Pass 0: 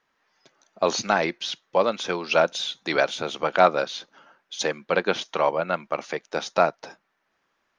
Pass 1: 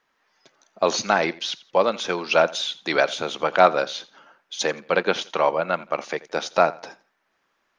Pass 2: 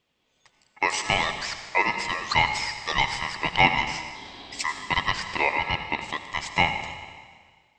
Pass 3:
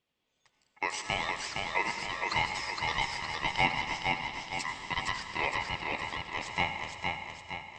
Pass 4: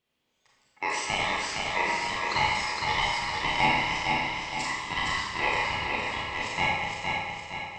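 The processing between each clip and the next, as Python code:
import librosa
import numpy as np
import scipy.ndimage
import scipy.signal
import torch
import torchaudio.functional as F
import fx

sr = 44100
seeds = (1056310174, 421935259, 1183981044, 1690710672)

y1 = fx.peak_eq(x, sr, hz=84.0, db=-3.5, octaves=2.6)
y1 = fx.echo_feedback(y1, sr, ms=85, feedback_pct=28, wet_db=-20)
y1 = F.gain(torch.from_numpy(y1), 2.0).numpy()
y2 = fx.rev_freeverb(y1, sr, rt60_s=1.7, hf_ratio=1.0, predelay_ms=45, drr_db=8.0)
y2 = fx.spec_repair(y2, sr, seeds[0], start_s=4.17, length_s=0.55, low_hz=690.0, high_hz=3400.0, source='after')
y2 = y2 * np.sin(2.0 * np.pi * 1500.0 * np.arange(len(y2)) / sr)
y2 = F.gain(torch.from_numpy(y2), -1.0).numpy()
y3 = fx.cheby_harmonics(y2, sr, harmonics=(7,), levels_db=(-41,), full_scale_db=-2.5)
y3 = fx.echo_feedback(y3, sr, ms=463, feedback_pct=50, wet_db=-3.5)
y3 = F.gain(torch.from_numpy(y3), -8.5).numpy()
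y4 = fx.rev_schroeder(y3, sr, rt60_s=0.84, comb_ms=28, drr_db=-3.5)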